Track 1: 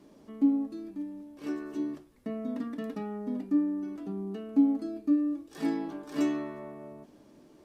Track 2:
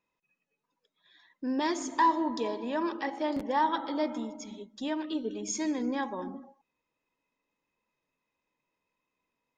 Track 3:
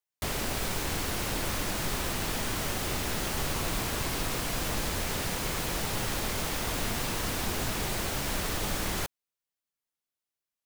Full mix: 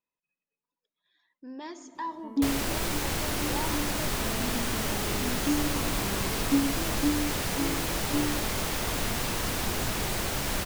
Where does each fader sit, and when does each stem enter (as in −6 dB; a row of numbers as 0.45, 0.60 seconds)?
−2.0, −11.0, +1.5 decibels; 1.95, 0.00, 2.20 seconds